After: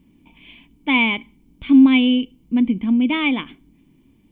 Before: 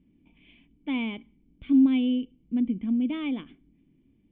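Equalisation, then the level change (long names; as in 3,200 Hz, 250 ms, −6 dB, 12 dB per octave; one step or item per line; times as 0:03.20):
dynamic equaliser 2,200 Hz, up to +7 dB, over −53 dBFS, Q 2
parametric band 970 Hz +10.5 dB 0.6 octaves
high-shelf EQ 2,900 Hz +11 dB
+8.0 dB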